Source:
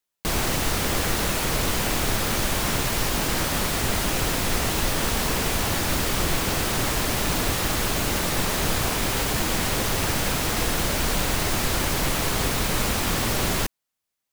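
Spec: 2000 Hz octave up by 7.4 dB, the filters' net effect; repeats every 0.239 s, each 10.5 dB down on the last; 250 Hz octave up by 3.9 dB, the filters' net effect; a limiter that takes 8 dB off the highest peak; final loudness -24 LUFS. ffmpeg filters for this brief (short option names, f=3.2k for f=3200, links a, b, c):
-af "equalizer=f=250:t=o:g=5,equalizer=f=2k:t=o:g=9,alimiter=limit=-15.5dB:level=0:latency=1,aecho=1:1:239|478|717:0.299|0.0896|0.0269"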